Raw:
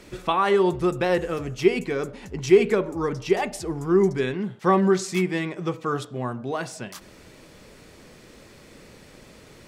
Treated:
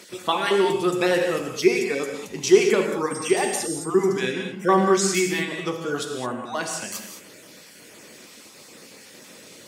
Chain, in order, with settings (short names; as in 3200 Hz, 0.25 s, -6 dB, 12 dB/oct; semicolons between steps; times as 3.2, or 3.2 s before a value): random spectral dropouts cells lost 23%; HPF 200 Hz 12 dB/oct; high shelf 3200 Hz +10.5 dB; 3.1–3.74 whine 8500 Hz -35 dBFS; non-linear reverb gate 0.24 s flat, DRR 3 dB